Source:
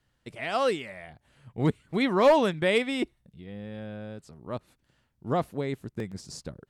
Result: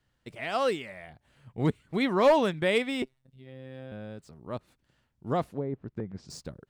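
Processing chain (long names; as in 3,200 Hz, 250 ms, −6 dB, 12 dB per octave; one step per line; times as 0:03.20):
running median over 3 samples
0:03.02–0:03.92: phases set to zero 131 Hz
0:05.47–0:06.30: treble cut that deepens with the level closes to 810 Hz, closed at −28 dBFS
level −1.5 dB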